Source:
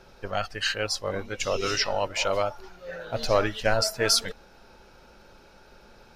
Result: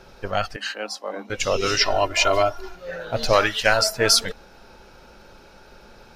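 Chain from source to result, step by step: 0.56–1.3 rippled Chebyshev high-pass 200 Hz, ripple 9 dB; 1.8–2.75 comb 2.9 ms, depth 82%; 3.33–3.82 tilt shelf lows -6.5 dB, about 760 Hz; gain +5 dB

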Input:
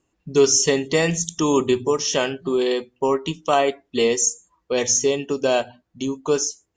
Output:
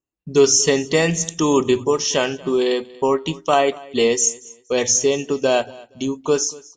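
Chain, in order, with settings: gate with hold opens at -47 dBFS; feedback echo 0.235 s, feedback 23%, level -22 dB; gain +2 dB

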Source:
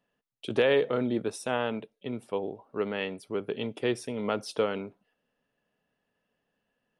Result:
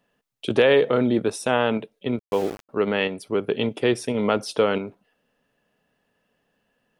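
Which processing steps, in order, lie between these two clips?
in parallel at -1.5 dB: level quantiser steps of 17 dB; 2.19–2.69 on the sum: sample gate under -37.5 dBFS; gain +5 dB

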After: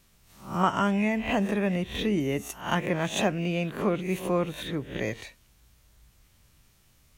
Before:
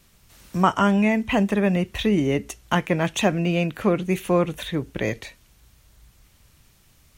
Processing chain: spectral swells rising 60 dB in 0.41 s; 2.2–2.61 bell 13000 Hz +14.5 dB 0.3 oct; gain -6.5 dB

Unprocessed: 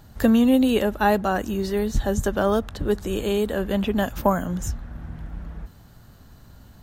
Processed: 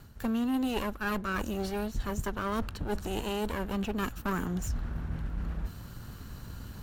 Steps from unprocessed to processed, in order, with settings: minimum comb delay 0.71 ms; reverse; compressor 5:1, threshold -36 dBFS, peak gain reduction 19 dB; reverse; gain +5.5 dB

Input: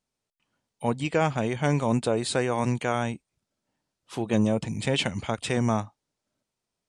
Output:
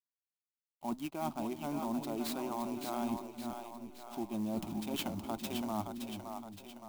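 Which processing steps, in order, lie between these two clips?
backlash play -39 dBFS; reverse; compressor, threshold -33 dBFS, peak gain reduction 14.5 dB; reverse; fixed phaser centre 480 Hz, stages 6; split-band echo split 390 Hz, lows 0.365 s, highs 0.568 s, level -5.5 dB; clock jitter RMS 0.032 ms; gain +2.5 dB

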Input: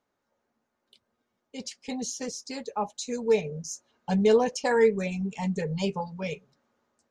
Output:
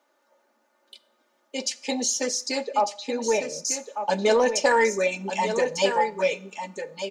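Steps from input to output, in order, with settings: Chebyshev high-pass 460 Hz, order 2; comb 3.4 ms, depth 63%; in parallel at -1.5 dB: compressor, threshold -37 dBFS, peak gain reduction 14 dB; on the sum: soft clip -14 dBFS, distortion -26 dB; 2.63–3.65 air absorption 300 m; on a send: echo 1.199 s -8.5 dB; on the sum: Schroeder reverb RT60 0.56 s, combs from 28 ms, DRR 19 dB; gain +6 dB

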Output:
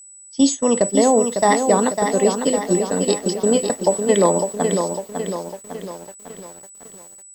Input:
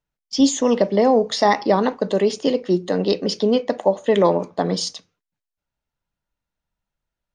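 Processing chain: whine 7900 Hz -24 dBFS; gate -19 dBFS, range -17 dB; lo-fi delay 0.552 s, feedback 55%, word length 7-bit, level -6 dB

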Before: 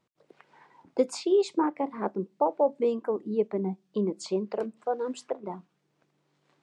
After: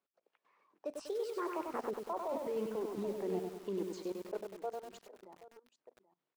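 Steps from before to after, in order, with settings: Doppler pass-by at 2.42, 33 m/s, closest 2.9 m; speed mistake 24 fps film run at 25 fps; in parallel at -8.5 dB: short-mantissa float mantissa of 2-bit; on the sum: HPF 320 Hz 12 dB/oct; high shelf 6800 Hz -8.5 dB; reverse; compressor, threshold -41 dBFS, peak gain reduction 22 dB; reverse; echo 0.78 s -16 dB; level quantiser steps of 18 dB; lo-fi delay 97 ms, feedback 55%, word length 12-bit, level -4 dB; gain +17.5 dB

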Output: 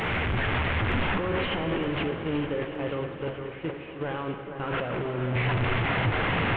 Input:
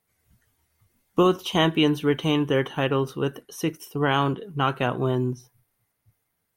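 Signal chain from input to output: delta modulation 16 kbps, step -26 dBFS; 2.11–4.6 gate -22 dBFS, range -28 dB; dynamic EQ 530 Hz, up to +7 dB, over -39 dBFS, Q 2.9; AGC; limiter -27.5 dBFS, peak gain reduction 26 dB; echo with dull and thin repeats by turns 0.459 s, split 1700 Hz, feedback 63%, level -8.5 dB; plate-style reverb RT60 3.9 s, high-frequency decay 0.8×, DRR 7 dB; gain +4 dB

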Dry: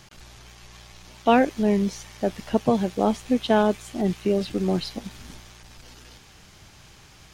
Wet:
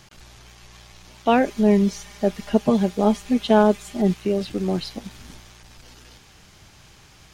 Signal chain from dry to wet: 1.44–4.14 comb 4.9 ms, depth 72%

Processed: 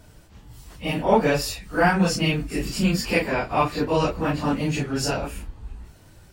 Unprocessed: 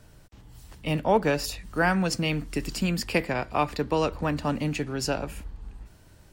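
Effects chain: phase scrambler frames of 0.1 s; gain +4 dB

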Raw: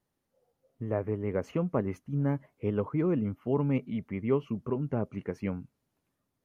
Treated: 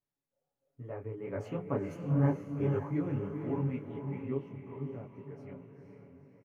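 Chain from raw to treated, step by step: Doppler pass-by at 2.2, 9 m/s, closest 5.7 m; comb 7.1 ms; on a send: diffused feedback echo 0.483 s, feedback 45%, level -5 dB; on the sum: detuned doubles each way 49 cents

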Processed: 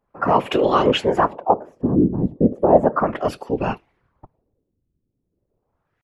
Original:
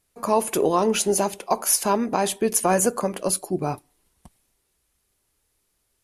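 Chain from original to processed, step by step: LFO low-pass sine 0.35 Hz 210–2800 Hz; pitch shift +1.5 st; whisperiser; gain +3 dB

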